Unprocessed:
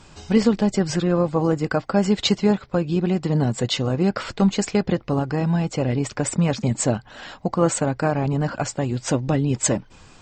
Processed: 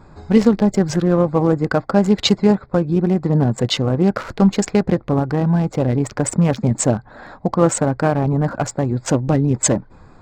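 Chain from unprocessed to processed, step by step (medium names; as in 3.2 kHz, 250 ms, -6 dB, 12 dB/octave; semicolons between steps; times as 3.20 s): local Wiener filter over 15 samples; trim +4.5 dB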